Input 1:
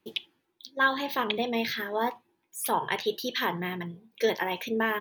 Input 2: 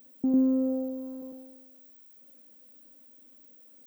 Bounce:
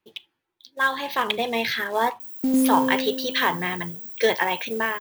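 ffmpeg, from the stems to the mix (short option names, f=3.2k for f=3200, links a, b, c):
-filter_complex "[0:a]equalizer=f=250:w=0.64:g=-9,dynaudnorm=f=380:g=5:m=14.5dB,volume=-2dB[a];[1:a]equalizer=f=740:w=0.42:g=3.5,aexciter=amount=5.3:drive=8.1:freq=5.4k,adelay=2200,volume=1.5dB[b];[a][b]amix=inputs=2:normalize=0,highshelf=f=3.8k:g=-6.5,acrusher=bits=5:mode=log:mix=0:aa=0.000001"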